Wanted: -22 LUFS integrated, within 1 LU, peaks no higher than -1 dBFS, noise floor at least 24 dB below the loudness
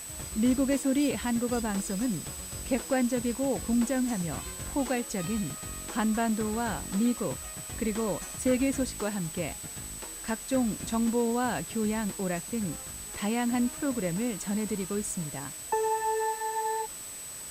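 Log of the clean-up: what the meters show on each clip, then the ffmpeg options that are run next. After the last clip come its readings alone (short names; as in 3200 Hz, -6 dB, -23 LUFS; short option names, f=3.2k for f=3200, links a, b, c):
steady tone 8000 Hz; tone level -40 dBFS; noise floor -41 dBFS; noise floor target -54 dBFS; loudness -30.0 LUFS; peak -16.5 dBFS; loudness target -22.0 LUFS
-> -af "bandreject=f=8k:w=30"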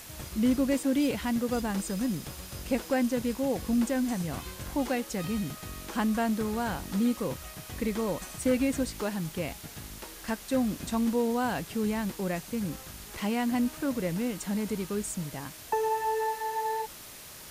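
steady tone none; noise floor -46 dBFS; noise floor target -55 dBFS
-> -af "afftdn=nr=9:nf=-46"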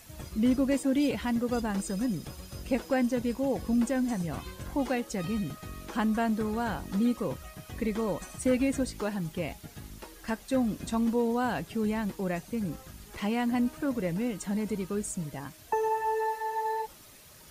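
noise floor -52 dBFS; noise floor target -55 dBFS
-> -af "afftdn=nr=6:nf=-52"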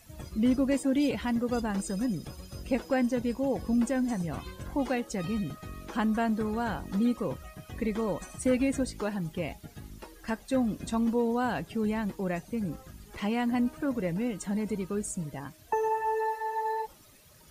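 noise floor -55 dBFS; loudness -30.5 LUFS; peak -17.5 dBFS; loudness target -22.0 LUFS
-> -af "volume=8.5dB"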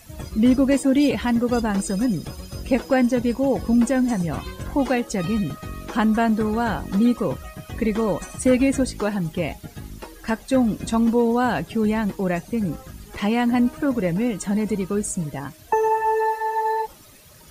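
loudness -22.0 LUFS; peak -9.0 dBFS; noise floor -46 dBFS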